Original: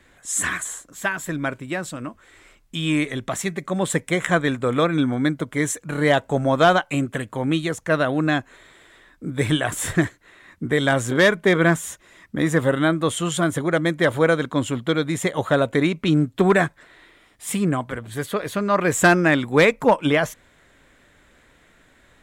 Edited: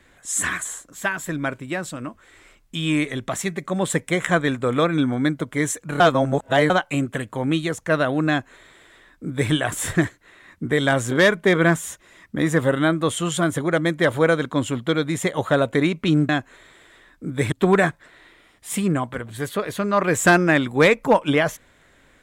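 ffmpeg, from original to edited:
-filter_complex "[0:a]asplit=5[s0][s1][s2][s3][s4];[s0]atrim=end=6.002[s5];[s1]atrim=start=5.998:end=6.702,asetpts=PTS-STARTPTS,areverse[s6];[s2]atrim=start=6.698:end=16.292[s7];[s3]atrim=start=8.288:end=9.522[s8];[s4]atrim=start=16.288[s9];[s5][s6]acrossfade=d=0.004:c1=hsin:c2=hsin[s10];[s10][s7]acrossfade=d=0.004:c1=hsin:c2=hsin[s11];[s11][s8]acrossfade=d=0.004:c1=hsin:c2=hsin[s12];[s12][s9]acrossfade=d=0.004:c1=hsin:c2=hsin"

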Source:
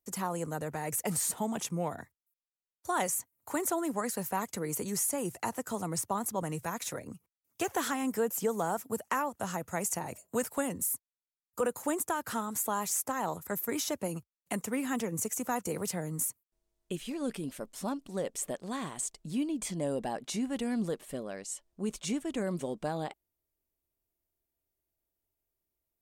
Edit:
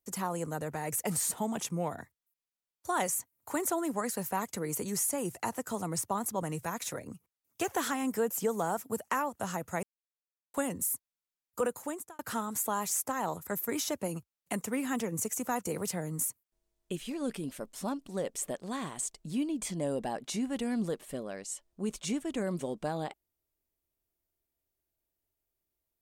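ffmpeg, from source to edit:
-filter_complex "[0:a]asplit=4[s0][s1][s2][s3];[s0]atrim=end=9.83,asetpts=PTS-STARTPTS,afade=t=out:st=9.826:d=0.004:c=hsin[s4];[s1]atrim=start=9.83:end=10.54,asetpts=PTS-STARTPTS,volume=0[s5];[s2]atrim=start=10.54:end=12.19,asetpts=PTS-STARTPTS,afade=t=in:d=0.004:c=hsin,afade=t=out:st=1.09:d=0.56[s6];[s3]atrim=start=12.19,asetpts=PTS-STARTPTS,afade=t=in:d=0.004:c=hsin[s7];[s4][s5][s6][s7]concat=n=4:v=0:a=1"

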